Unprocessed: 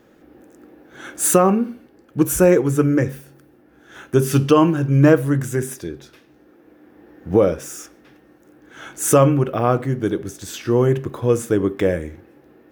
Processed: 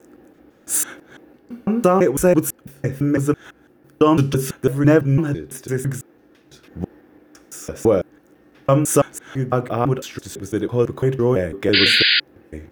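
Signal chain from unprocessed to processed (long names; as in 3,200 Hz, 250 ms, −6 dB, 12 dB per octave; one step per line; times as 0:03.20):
slices reordered back to front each 167 ms, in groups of 4
sound drawn into the spectrogram noise, 0:11.73–0:12.20, 1,400–4,900 Hz −14 dBFS
level −1 dB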